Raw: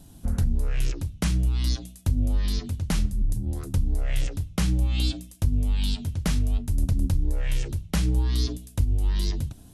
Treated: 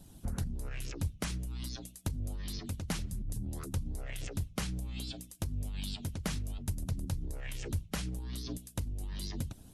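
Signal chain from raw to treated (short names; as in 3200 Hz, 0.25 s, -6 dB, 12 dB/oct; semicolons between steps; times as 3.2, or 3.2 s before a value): limiter -20.5 dBFS, peak gain reduction 8.5 dB; harmonic-percussive split harmonic -14 dB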